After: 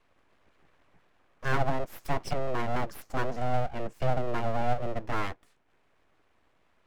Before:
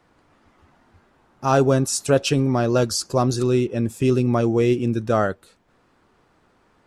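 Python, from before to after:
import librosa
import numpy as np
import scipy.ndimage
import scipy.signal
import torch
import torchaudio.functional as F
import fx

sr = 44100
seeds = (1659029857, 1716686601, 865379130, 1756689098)

y = fx.high_shelf(x, sr, hz=7500.0, db=-10.5)
y = fx.fixed_phaser(y, sr, hz=790.0, stages=8)
y = fx.env_lowpass_down(y, sr, base_hz=1200.0, full_db=-17.5)
y = np.abs(y)
y = F.gain(torch.from_numpy(y), -3.0).numpy()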